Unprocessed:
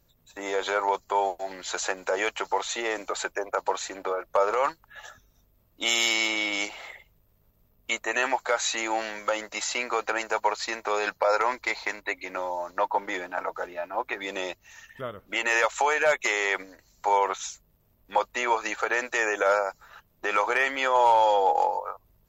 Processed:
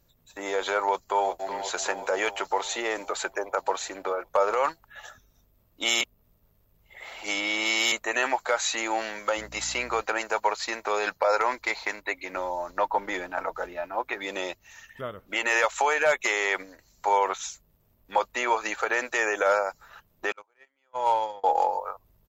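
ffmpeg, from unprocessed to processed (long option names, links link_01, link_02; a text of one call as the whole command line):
ffmpeg -i in.wav -filter_complex "[0:a]asplit=2[link_01][link_02];[link_02]afade=type=in:start_time=0.8:duration=0.01,afade=type=out:start_time=1.51:duration=0.01,aecho=0:1:370|740|1110|1480|1850|2220|2590|2960|3330:0.316228|0.205548|0.133606|0.0868441|0.0564486|0.0366916|0.0238495|0.0155022|0.0100764[link_03];[link_01][link_03]amix=inputs=2:normalize=0,asettb=1/sr,asplit=3[link_04][link_05][link_06];[link_04]atrim=end=9.374[link_07];[link_05]atrim=start=9.37:end=10.02,asetpts=PTS-STARTPTS,afade=type=in:duration=0.004:curve=qsin,afade=type=out:start_time=0.646:duration=0.004:curve=qsin,aeval=exprs='val(0)+0.00447*(sin(2*PI*60*n/s)+sin(2*PI*2*60*n/s)/2+sin(2*PI*3*60*n/s)/3+sin(2*PI*4*60*n/s)/4+sin(2*PI*5*60*n/s)/5)':channel_layout=same[link_08];[link_06]atrim=start=10.016[link_09];[link_07][link_08]acrossfade=duration=0.004:curve1=hsin:curve2=qsin[link_10];[link_10][link_09]acrossfade=duration=0.004:curve1=qsin:curve2=hsin,asettb=1/sr,asplit=3[link_11][link_12][link_13];[link_11]atrim=end=12.334[link_14];[link_12]atrim=start=12.33:end=13.93,asetpts=PTS-STARTPTS,afade=type=in:duration=0.004:curve=qsin,afade=type=out:start_time=1.596:duration=0.004:curve=qsin,lowshelf=frequency=98:gain=10.5[link_15];[link_13]atrim=start=13.926[link_16];[link_14][link_15]acrossfade=duration=0.004:curve1=hsin:curve2=qsin[link_17];[link_17][link_16]acrossfade=duration=0.004:curve1=qsin:curve2=hsin,asettb=1/sr,asplit=3[link_18][link_19][link_20];[link_18]atrim=end=20.324[link_21];[link_19]atrim=start=20.32:end=21.44,asetpts=PTS-STARTPTS,afade=type=in:duration=0.004:curve=qsin,afade=type=out:start_time=1.116:duration=0.004:curve=qsin,agate=range=-45dB:threshold=-19dB:ratio=16:release=100:detection=peak[link_22];[link_20]atrim=start=21.436[link_23];[link_21][link_22]acrossfade=duration=0.004:curve1=hsin:curve2=qsin[link_24];[link_24][link_23]acrossfade=duration=0.004:curve1=qsin:curve2=hsin,asplit=3[link_25][link_26][link_27];[link_25]atrim=end=6.012[link_28];[link_26]atrim=start=6.008:end=7.922,asetpts=PTS-STARTPTS,areverse[link_29];[link_27]atrim=start=7.918[link_30];[link_28][link_29]acrossfade=duration=0.004:curve1=hsin:curve2=hsin[link_31];[link_31][link_30]acrossfade=duration=0.004:curve1=hsin:curve2=hsin" out.wav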